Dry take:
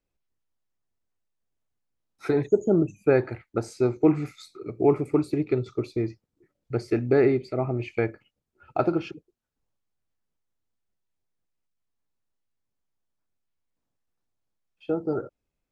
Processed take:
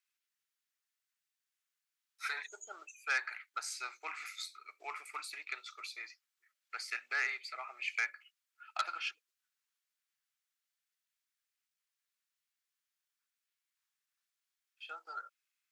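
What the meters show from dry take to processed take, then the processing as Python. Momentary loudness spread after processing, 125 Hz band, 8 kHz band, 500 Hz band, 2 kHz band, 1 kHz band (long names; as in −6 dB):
14 LU, below −40 dB, can't be measured, −34.5 dB, +2.5 dB, −7.5 dB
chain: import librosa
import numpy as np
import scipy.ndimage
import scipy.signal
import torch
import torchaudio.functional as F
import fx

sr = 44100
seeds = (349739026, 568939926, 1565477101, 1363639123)

y = scipy.signal.sosfilt(scipy.signal.butter(4, 1400.0, 'highpass', fs=sr, output='sos'), x)
y = fx.transformer_sat(y, sr, knee_hz=2900.0)
y = y * 10.0 ** (4.0 / 20.0)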